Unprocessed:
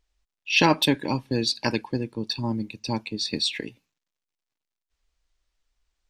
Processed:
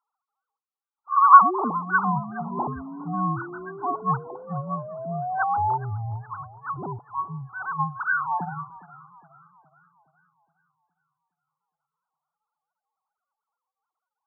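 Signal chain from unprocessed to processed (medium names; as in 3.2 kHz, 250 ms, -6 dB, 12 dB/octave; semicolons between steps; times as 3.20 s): formants replaced by sine waves; painted sound rise, 0.72–2.47 s, 390–2100 Hz -30 dBFS; resonant high shelf 1.6 kHz +7.5 dB, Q 3; speed mistake 78 rpm record played at 33 rpm; modulated delay 415 ms, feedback 49%, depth 114 cents, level -19 dB; trim -6 dB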